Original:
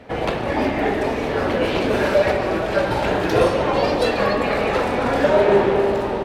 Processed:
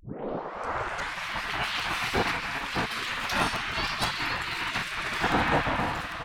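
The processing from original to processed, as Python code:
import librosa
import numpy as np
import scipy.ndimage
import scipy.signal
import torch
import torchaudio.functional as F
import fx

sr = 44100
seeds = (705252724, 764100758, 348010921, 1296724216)

y = fx.tape_start_head(x, sr, length_s=1.26)
y = fx.spec_gate(y, sr, threshold_db=-15, keep='weak')
y = fx.buffer_crackle(y, sr, first_s=0.99, period_s=0.16, block=256, kind='repeat')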